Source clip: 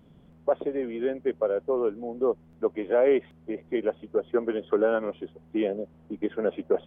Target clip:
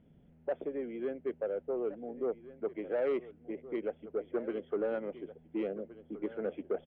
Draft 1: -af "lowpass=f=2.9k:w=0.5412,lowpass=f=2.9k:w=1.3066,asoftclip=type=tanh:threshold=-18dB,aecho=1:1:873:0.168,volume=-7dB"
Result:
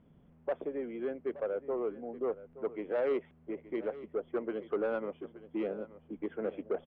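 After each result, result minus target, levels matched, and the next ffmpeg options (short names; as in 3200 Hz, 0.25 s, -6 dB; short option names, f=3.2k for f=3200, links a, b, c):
echo 0.547 s early; 1000 Hz band +2.5 dB
-af "lowpass=f=2.9k:w=0.5412,lowpass=f=2.9k:w=1.3066,asoftclip=type=tanh:threshold=-18dB,aecho=1:1:1420:0.168,volume=-7dB"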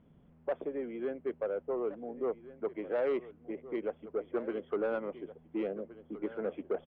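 1000 Hz band +2.5 dB
-af "lowpass=f=2.9k:w=0.5412,lowpass=f=2.9k:w=1.3066,equalizer=f=1.1k:w=3:g=-12,asoftclip=type=tanh:threshold=-18dB,aecho=1:1:1420:0.168,volume=-7dB"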